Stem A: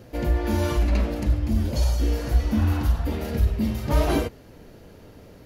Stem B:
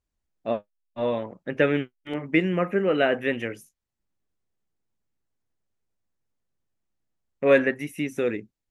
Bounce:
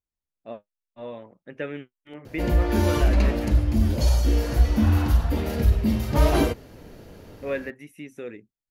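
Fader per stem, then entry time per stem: +2.0 dB, -11.0 dB; 2.25 s, 0.00 s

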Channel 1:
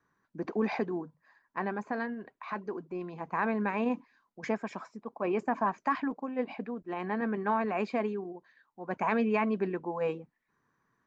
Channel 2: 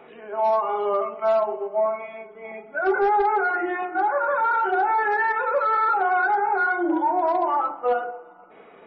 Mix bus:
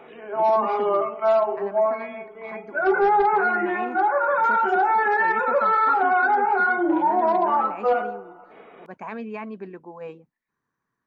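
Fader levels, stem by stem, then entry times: -5.5 dB, +1.5 dB; 0.00 s, 0.00 s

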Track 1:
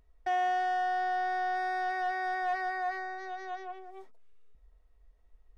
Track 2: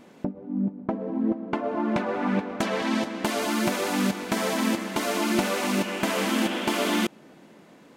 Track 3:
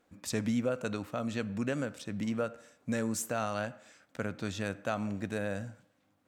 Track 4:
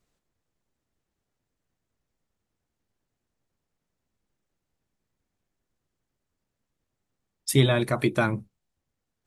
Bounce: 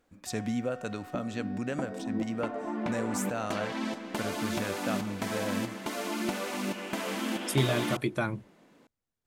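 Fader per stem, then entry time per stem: -19.0 dB, -8.0 dB, -1.0 dB, -6.5 dB; 0.00 s, 0.90 s, 0.00 s, 0.00 s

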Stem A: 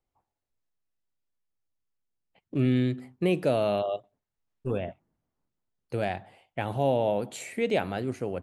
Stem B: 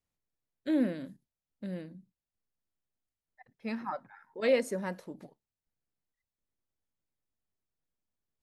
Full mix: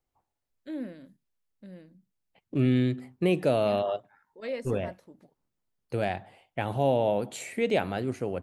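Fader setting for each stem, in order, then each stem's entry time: +0.5 dB, -8.0 dB; 0.00 s, 0.00 s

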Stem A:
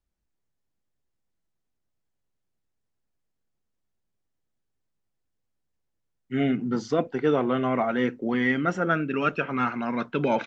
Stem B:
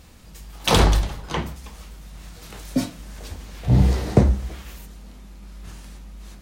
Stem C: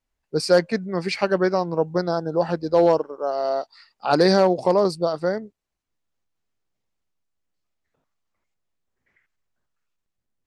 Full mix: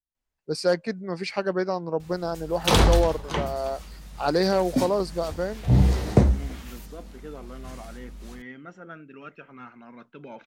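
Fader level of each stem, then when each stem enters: -18.0 dB, -2.0 dB, -5.5 dB; 0.00 s, 2.00 s, 0.15 s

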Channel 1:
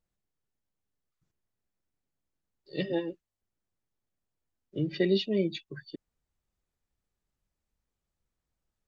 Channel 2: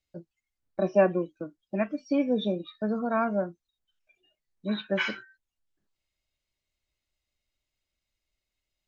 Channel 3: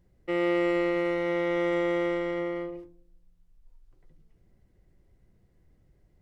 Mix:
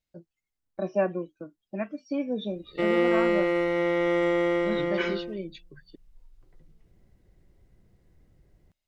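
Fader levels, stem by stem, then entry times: -8.0 dB, -4.0 dB, +2.5 dB; 0.00 s, 0.00 s, 2.50 s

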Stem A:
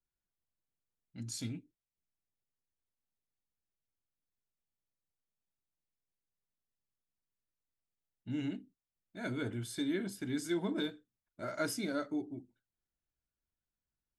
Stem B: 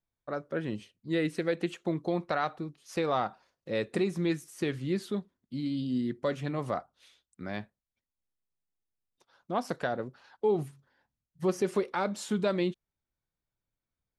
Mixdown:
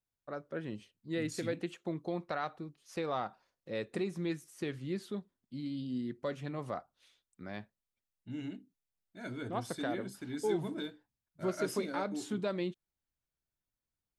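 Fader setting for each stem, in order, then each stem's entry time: -4.0 dB, -6.5 dB; 0.00 s, 0.00 s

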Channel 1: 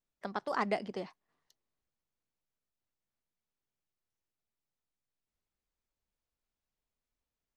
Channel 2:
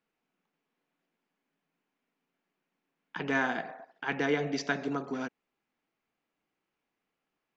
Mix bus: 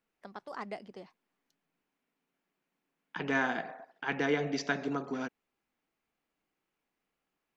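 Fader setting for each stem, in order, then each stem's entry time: -8.5 dB, -1.0 dB; 0.00 s, 0.00 s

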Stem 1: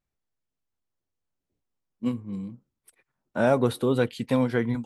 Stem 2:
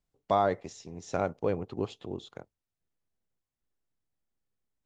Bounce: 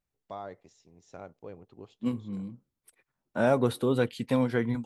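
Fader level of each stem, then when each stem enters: -2.5 dB, -15.0 dB; 0.00 s, 0.00 s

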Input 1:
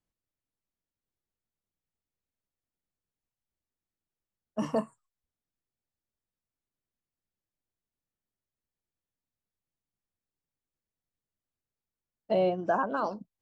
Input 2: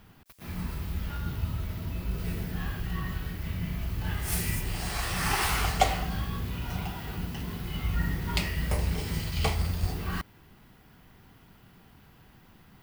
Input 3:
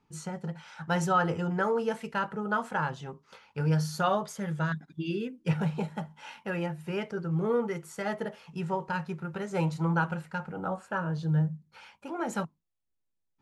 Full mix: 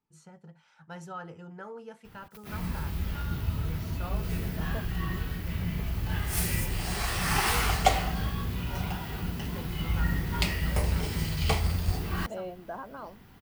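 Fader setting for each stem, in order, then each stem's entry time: -12.0 dB, +1.0 dB, -15.0 dB; 0.00 s, 2.05 s, 0.00 s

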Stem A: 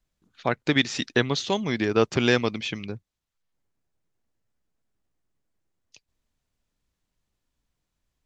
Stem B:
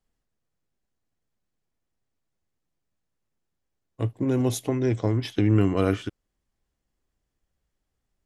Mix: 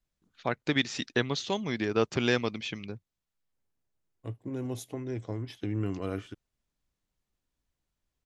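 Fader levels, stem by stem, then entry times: -5.5 dB, -11.5 dB; 0.00 s, 0.25 s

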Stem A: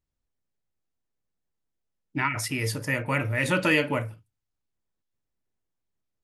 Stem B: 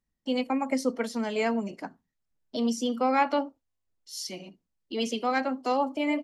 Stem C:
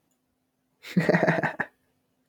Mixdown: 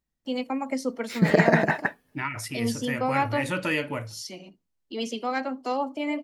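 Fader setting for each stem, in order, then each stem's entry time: -4.5 dB, -1.5 dB, +2.5 dB; 0.00 s, 0.00 s, 0.25 s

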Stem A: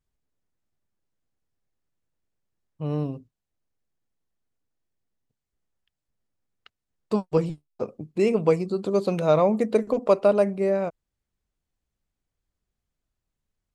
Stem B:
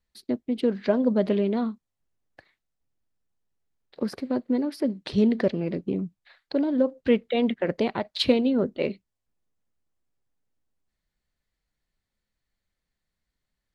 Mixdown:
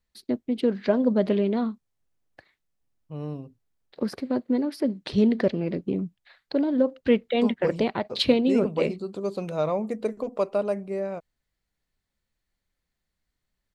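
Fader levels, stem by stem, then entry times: -6.5 dB, +0.5 dB; 0.30 s, 0.00 s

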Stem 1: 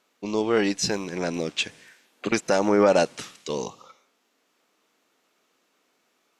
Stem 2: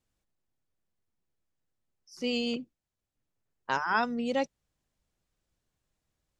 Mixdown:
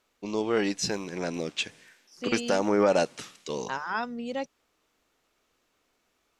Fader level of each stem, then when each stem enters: -4.0 dB, -3.5 dB; 0.00 s, 0.00 s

